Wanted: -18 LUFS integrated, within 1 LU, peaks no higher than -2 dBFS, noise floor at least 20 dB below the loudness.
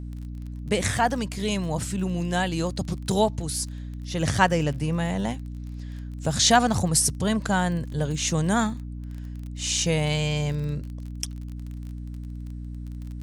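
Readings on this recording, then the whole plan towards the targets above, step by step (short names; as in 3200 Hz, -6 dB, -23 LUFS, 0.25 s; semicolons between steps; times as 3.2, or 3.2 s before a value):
ticks 25/s; hum 60 Hz; harmonics up to 300 Hz; hum level -33 dBFS; loudness -25.0 LUFS; peak -5.5 dBFS; loudness target -18.0 LUFS
-> de-click; de-hum 60 Hz, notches 5; gain +7 dB; limiter -2 dBFS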